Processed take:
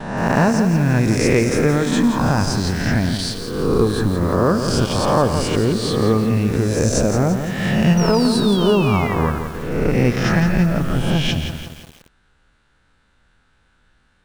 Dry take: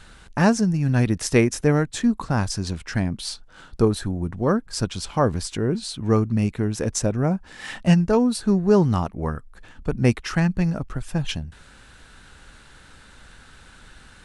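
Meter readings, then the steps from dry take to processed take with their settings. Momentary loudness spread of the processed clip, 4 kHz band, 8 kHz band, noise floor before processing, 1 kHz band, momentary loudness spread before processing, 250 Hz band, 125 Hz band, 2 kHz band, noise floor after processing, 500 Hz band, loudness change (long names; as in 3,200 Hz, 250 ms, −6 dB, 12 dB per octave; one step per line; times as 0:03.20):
6 LU, +8.0 dB, +3.5 dB, −49 dBFS, +7.0 dB, 11 LU, +4.5 dB, +4.5 dB, +7.0 dB, −60 dBFS, +5.5 dB, +5.0 dB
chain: peak hold with a rise ahead of every peak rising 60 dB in 1.00 s
noise gate with hold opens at −30 dBFS
high-shelf EQ 5,300 Hz −10 dB
downward compressor 2.5 to 1, threshold −21 dBFS, peak gain reduction 7.5 dB
sound drawn into the spectrogram fall, 0:07.97–0:09.14, 1,900–5,900 Hz −37 dBFS
feedback echo at a low word length 170 ms, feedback 55%, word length 7 bits, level −7.5 dB
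level +6.5 dB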